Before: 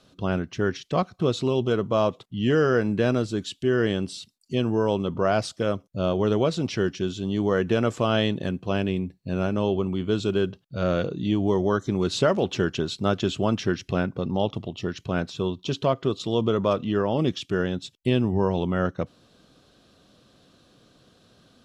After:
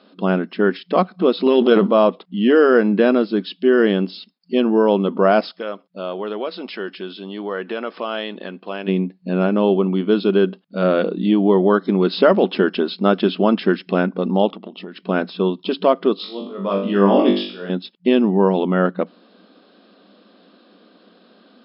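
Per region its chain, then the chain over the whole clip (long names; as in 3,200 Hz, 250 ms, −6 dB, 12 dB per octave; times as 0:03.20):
0:01.46–0:01.91: high-shelf EQ 4,000 Hz +8.5 dB + transient designer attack +6 dB, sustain +10 dB
0:05.51–0:08.88: high-pass filter 800 Hz 6 dB per octave + downward compressor 1.5 to 1, threshold −37 dBFS
0:14.51–0:15.07: high-shelf EQ 6,900 Hz −10 dB + downward compressor 12 to 1, threshold −34 dBFS
0:16.16–0:17.70: volume swells 565 ms + flutter between parallel walls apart 3.5 metres, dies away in 0.5 s
whole clip: brick-wall band-pass 180–5,300 Hz; high-shelf EQ 3,800 Hz −10 dB; level +8.5 dB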